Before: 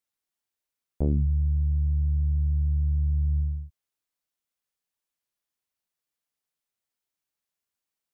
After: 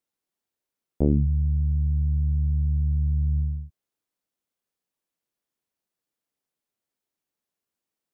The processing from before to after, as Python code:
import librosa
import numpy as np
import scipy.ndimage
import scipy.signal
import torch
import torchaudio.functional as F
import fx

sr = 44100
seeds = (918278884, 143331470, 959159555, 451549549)

y = fx.peak_eq(x, sr, hz=300.0, db=9.0, octaves=2.7)
y = F.gain(torch.from_numpy(y), -1.5).numpy()